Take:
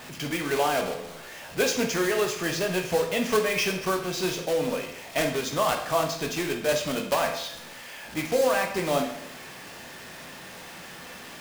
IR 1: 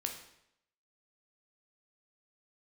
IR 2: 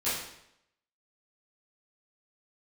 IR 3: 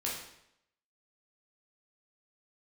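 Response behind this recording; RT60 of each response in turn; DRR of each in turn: 1; 0.75, 0.75, 0.75 seconds; 2.5, −14.0, −5.0 decibels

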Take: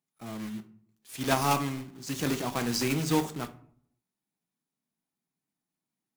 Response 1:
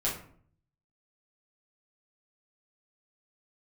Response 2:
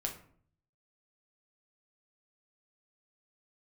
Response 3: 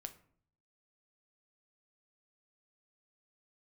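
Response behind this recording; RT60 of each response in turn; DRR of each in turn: 3; 0.55, 0.55, 0.55 seconds; −7.0, 1.0, 7.5 decibels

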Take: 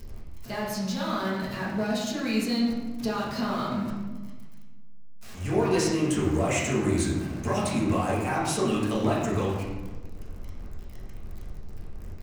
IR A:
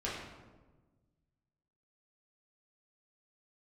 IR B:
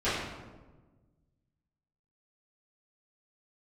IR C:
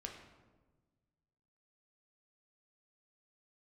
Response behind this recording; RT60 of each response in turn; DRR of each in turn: A; 1.3, 1.3, 1.3 seconds; −7.5, −16.0, 1.0 decibels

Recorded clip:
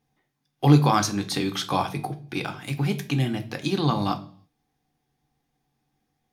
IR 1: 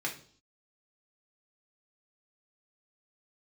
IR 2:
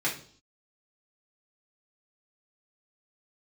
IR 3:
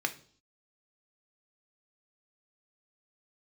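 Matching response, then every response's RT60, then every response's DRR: 3; 0.50, 0.50, 0.50 seconds; −1.0, −5.5, 6.0 decibels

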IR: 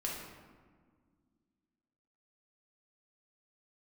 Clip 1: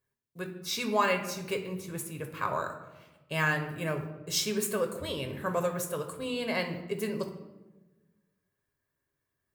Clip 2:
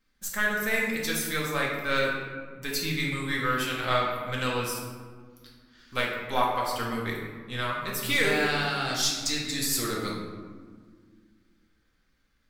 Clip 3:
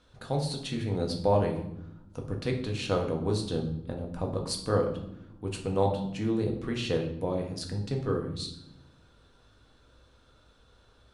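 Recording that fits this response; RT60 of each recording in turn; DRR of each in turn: 2; 1.2, 1.7, 0.90 seconds; 4.0, −3.5, 1.5 decibels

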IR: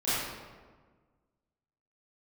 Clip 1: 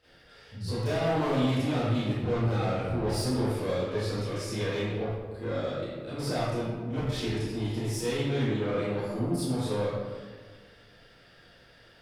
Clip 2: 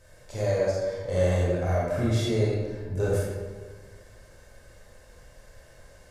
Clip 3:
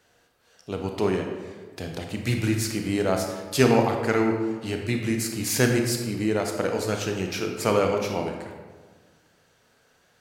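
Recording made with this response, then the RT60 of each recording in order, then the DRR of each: 1; 1.5, 1.5, 1.5 seconds; −15.0, −6.0, 2.5 decibels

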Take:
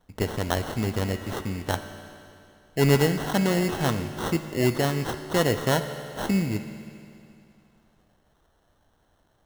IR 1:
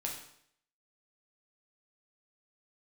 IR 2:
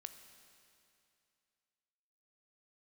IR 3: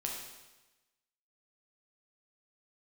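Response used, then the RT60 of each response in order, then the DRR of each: 2; 0.65, 2.6, 1.1 seconds; −1.5, 8.0, −1.5 decibels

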